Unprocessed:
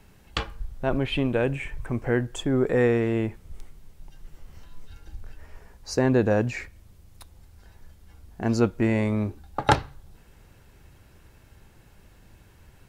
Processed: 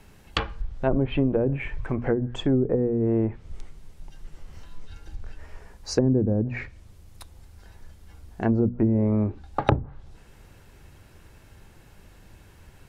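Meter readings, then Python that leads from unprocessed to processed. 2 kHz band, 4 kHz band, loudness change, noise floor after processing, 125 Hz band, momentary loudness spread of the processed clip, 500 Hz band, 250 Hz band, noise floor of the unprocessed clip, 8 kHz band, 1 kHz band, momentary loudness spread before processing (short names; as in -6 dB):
-5.5 dB, -2.0 dB, +0.5 dB, -52 dBFS, +2.0 dB, 20 LU, -1.0 dB, +1.5 dB, -55 dBFS, -2.5 dB, -3.5 dB, 11 LU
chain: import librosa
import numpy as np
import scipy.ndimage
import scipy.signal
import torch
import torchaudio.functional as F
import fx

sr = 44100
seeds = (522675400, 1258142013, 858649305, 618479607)

y = fx.env_lowpass_down(x, sr, base_hz=300.0, full_db=-18.0)
y = fx.hum_notches(y, sr, base_hz=60, count=4)
y = F.gain(torch.from_numpy(y), 3.0).numpy()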